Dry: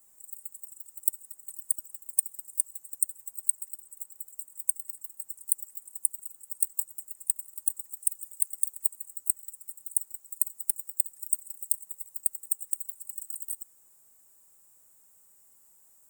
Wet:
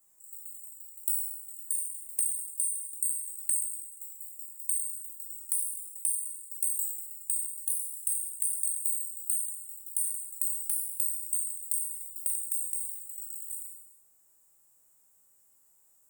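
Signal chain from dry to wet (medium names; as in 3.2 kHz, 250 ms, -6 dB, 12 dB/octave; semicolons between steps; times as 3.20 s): spectral sustain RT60 1.00 s; feedback comb 110 Hz, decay 0.6 s, harmonics odd, mix 60%; hard clipper -16 dBFS, distortion -29 dB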